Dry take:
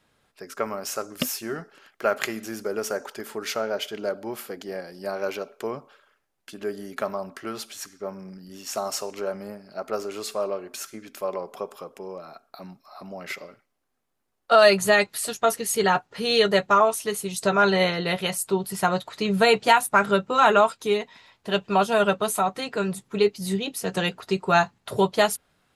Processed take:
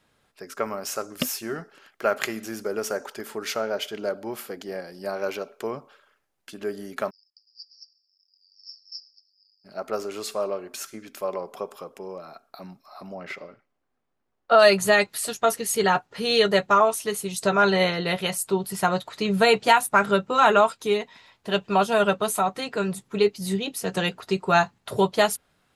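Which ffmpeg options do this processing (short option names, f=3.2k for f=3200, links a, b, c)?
-filter_complex "[0:a]asplit=3[a][b][c];[a]afade=t=out:st=7.09:d=0.02[d];[b]asuperpass=centerf=5000:order=8:qfactor=6.2,afade=t=in:st=7.09:d=0.02,afade=t=out:st=9.64:d=0.02[e];[c]afade=t=in:st=9.64:d=0.02[f];[d][e][f]amix=inputs=3:normalize=0,asplit=3[g][h][i];[g]afade=t=out:st=13.14:d=0.02[j];[h]aemphasis=mode=reproduction:type=75fm,afade=t=in:st=13.14:d=0.02,afade=t=out:st=14.58:d=0.02[k];[i]afade=t=in:st=14.58:d=0.02[l];[j][k][l]amix=inputs=3:normalize=0"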